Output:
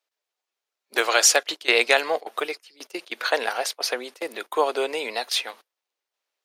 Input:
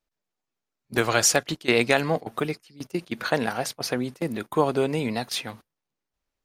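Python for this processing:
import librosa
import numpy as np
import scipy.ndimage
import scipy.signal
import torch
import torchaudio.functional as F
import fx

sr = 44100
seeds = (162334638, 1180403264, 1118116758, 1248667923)

y = scipy.signal.sosfilt(scipy.signal.butter(4, 420.0, 'highpass', fs=sr, output='sos'), x)
y = fx.peak_eq(y, sr, hz=3400.0, db=4.5, octaves=1.6)
y = y * librosa.db_to_amplitude(1.5)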